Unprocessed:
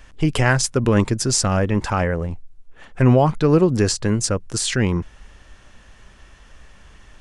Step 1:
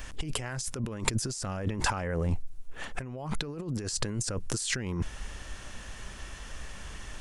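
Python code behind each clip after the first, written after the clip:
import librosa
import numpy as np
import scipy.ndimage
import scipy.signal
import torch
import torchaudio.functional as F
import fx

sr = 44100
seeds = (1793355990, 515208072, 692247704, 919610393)

y = fx.high_shelf(x, sr, hz=6400.0, db=10.0)
y = fx.over_compress(y, sr, threshold_db=-28.0, ratio=-1.0)
y = y * librosa.db_to_amplitude(-4.5)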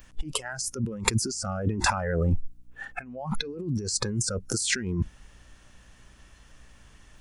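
y = fx.noise_reduce_blind(x, sr, reduce_db=17)
y = fx.add_hum(y, sr, base_hz=60, snr_db=30)
y = y * librosa.db_to_amplitude(5.0)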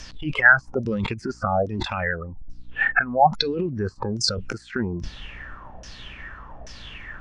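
y = fx.over_compress(x, sr, threshold_db=-34.0, ratio=-1.0)
y = fx.filter_lfo_lowpass(y, sr, shape='saw_down', hz=1.2, low_hz=610.0, high_hz=5800.0, q=7.4)
y = y * librosa.db_to_amplitude(6.0)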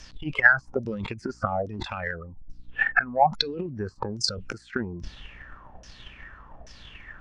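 y = fx.transient(x, sr, attack_db=8, sustain_db=3)
y = y * librosa.db_to_amplitude(-8.0)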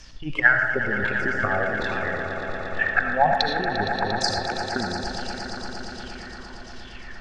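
y = fx.echo_swell(x, sr, ms=116, loudest=5, wet_db=-12)
y = fx.rev_freeverb(y, sr, rt60_s=0.85, hf_ratio=0.4, predelay_ms=40, drr_db=4.0)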